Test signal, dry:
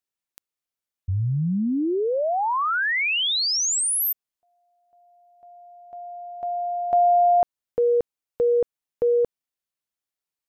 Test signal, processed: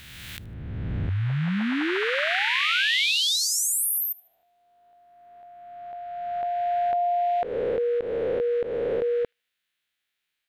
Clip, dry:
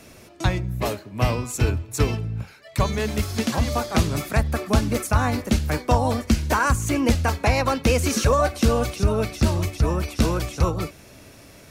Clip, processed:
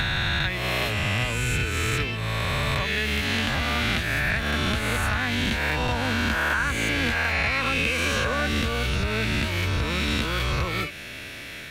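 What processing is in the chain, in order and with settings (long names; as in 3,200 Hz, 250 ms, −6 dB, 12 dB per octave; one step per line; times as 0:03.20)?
peak hold with a rise ahead of every peak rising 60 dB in 2.26 s
flat-topped bell 2,400 Hz +13 dB
downward compressor 5 to 1, threshold −23 dBFS
delay with a high-pass on its return 76 ms, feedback 32%, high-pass 3,000 Hz, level −22.5 dB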